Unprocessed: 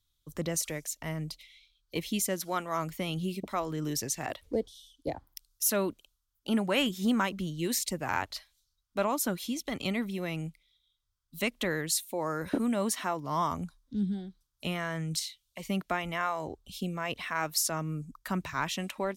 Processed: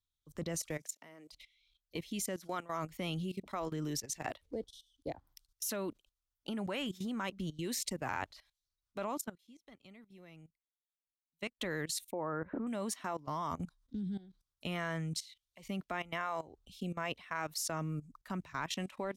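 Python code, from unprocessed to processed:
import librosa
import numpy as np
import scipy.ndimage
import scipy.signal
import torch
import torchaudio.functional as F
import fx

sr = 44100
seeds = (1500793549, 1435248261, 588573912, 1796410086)

y = fx.highpass(x, sr, hz=fx.line((0.78, 110.0), (1.31, 370.0)), slope=24, at=(0.78, 1.31), fade=0.02)
y = fx.upward_expand(y, sr, threshold_db=-41.0, expansion=2.5, at=(9.2, 11.59), fade=0.02)
y = fx.lowpass(y, sr, hz=1800.0, slope=24, at=(12.11, 12.67))
y = fx.high_shelf(y, sr, hz=11000.0, db=-9.0)
y = fx.level_steps(y, sr, step_db=18)
y = y * 10.0 ** (-1.0 / 20.0)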